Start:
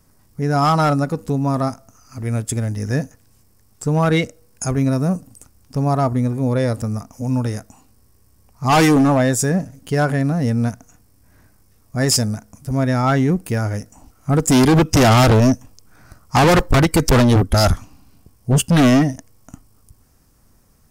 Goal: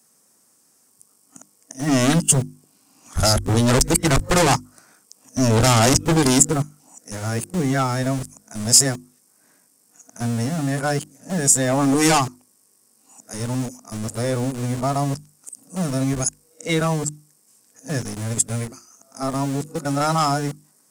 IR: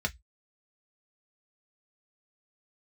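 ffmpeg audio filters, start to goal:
-filter_complex "[0:a]areverse,acrossover=split=180|810|2000[s0][s1][s2][s3];[s0]aeval=exprs='val(0)*gte(abs(val(0)),0.0596)':c=same[s4];[s4][s1][s2][s3]amix=inputs=4:normalize=0,equalizer=f=8100:t=o:w=1.1:g=12.5,bandreject=f=50:t=h:w=6,bandreject=f=100:t=h:w=6,bandreject=f=150:t=h:w=6,bandreject=f=200:t=h:w=6,bandreject=f=250:t=h:w=6,bandreject=f=300:t=h:w=6,bandreject=f=350:t=h:w=6,volume=0.631"

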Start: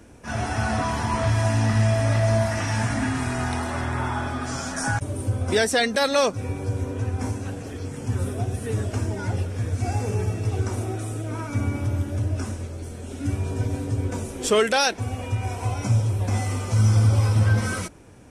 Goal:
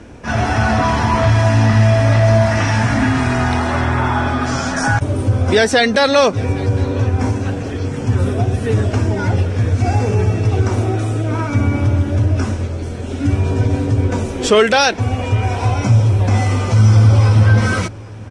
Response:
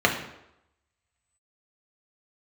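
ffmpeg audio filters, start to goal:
-filter_complex "[0:a]lowpass=5200,asplit=2[s0][s1];[s1]alimiter=limit=0.106:level=0:latency=1,volume=0.891[s2];[s0][s2]amix=inputs=2:normalize=0,aecho=1:1:806:0.075,volume=1.88"

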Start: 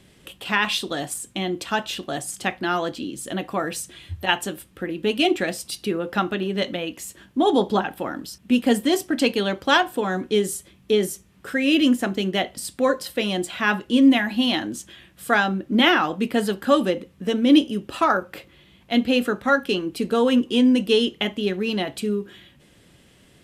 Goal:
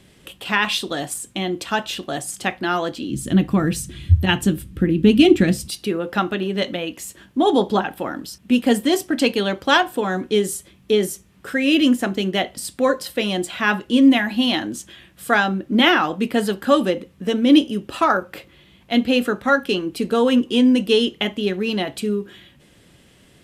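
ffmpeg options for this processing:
-filter_complex "[0:a]asplit=3[s0][s1][s2];[s0]afade=t=out:st=3.09:d=0.02[s3];[s1]asubboost=boost=11:cutoff=210,afade=t=in:st=3.09:d=0.02,afade=t=out:st=5.68:d=0.02[s4];[s2]afade=t=in:st=5.68:d=0.02[s5];[s3][s4][s5]amix=inputs=3:normalize=0,volume=1.26"

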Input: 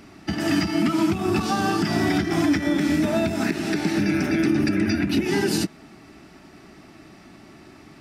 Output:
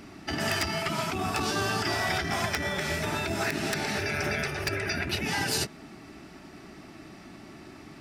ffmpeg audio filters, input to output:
-af "afftfilt=real='re*lt(hypot(re,im),0.316)':imag='im*lt(hypot(re,im),0.316)':win_size=1024:overlap=0.75,aeval=exprs='(mod(6.68*val(0)+1,2)-1)/6.68':c=same"

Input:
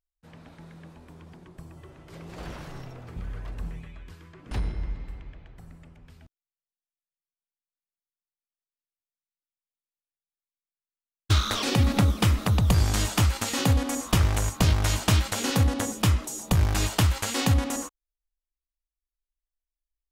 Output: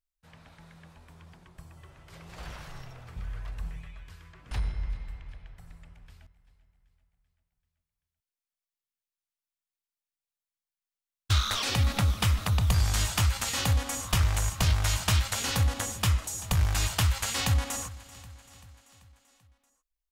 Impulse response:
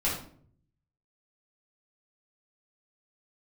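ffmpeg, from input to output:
-filter_complex "[0:a]equalizer=f=300:t=o:w=1.8:g=-13,asoftclip=type=tanh:threshold=0.237,asplit=2[s0][s1];[s1]aecho=0:1:387|774|1161|1548|1935:0.112|0.0662|0.0391|0.023|0.0136[s2];[s0][s2]amix=inputs=2:normalize=0"

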